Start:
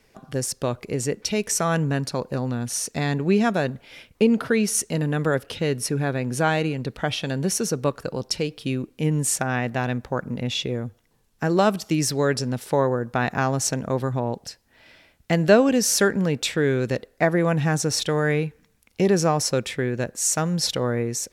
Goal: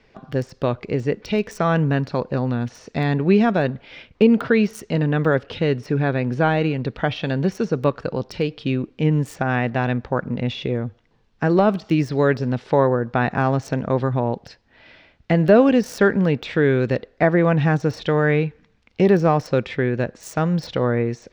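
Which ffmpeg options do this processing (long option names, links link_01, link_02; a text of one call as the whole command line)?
ffmpeg -i in.wav -filter_complex "[0:a]deesser=0.85,acrossover=split=4900[link_01][link_02];[link_02]acrusher=bits=4:mix=0:aa=0.5[link_03];[link_01][link_03]amix=inputs=2:normalize=0,volume=4dB" out.wav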